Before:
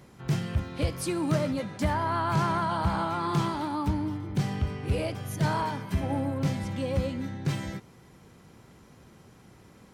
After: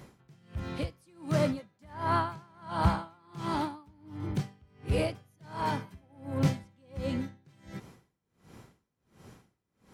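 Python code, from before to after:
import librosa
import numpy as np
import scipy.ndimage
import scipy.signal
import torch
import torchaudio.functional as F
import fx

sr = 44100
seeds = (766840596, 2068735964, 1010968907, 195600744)

y = x * 10.0 ** (-34 * (0.5 - 0.5 * np.cos(2.0 * np.pi * 1.4 * np.arange(len(x)) / sr)) / 20.0)
y = F.gain(torch.from_numpy(y), 2.5).numpy()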